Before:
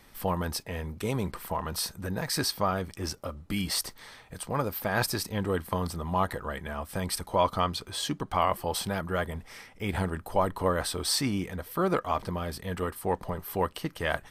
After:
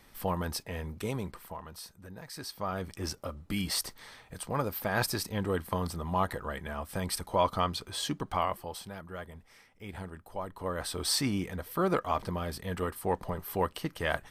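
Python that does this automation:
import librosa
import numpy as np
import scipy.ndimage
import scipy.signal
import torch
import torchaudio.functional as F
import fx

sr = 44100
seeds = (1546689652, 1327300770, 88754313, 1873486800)

y = fx.gain(x, sr, db=fx.line((1.0, -2.5), (1.79, -14.0), (2.39, -14.0), (2.88, -2.0), (8.3, -2.0), (8.82, -12.0), (10.48, -12.0), (11.04, -1.5)))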